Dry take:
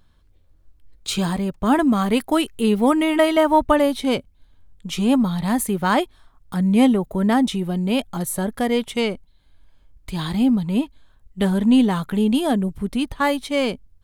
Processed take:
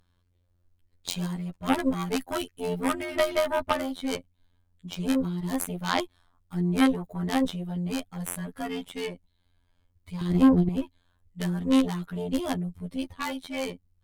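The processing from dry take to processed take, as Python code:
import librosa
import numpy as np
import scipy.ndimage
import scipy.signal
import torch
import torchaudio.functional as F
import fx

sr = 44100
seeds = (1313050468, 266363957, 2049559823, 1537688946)

y = fx.robotise(x, sr, hz=88.2)
y = fx.bass_treble(y, sr, bass_db=12, treble_db=-1, at=(10.21, 10.69))
y = fx.cheby_harmonics(y, sr, harmonics=(3, 8), levels_db=(-20, -20), full_scale_db=-1.5)
y = y * 10.0 ** (-3.0 / 20.0)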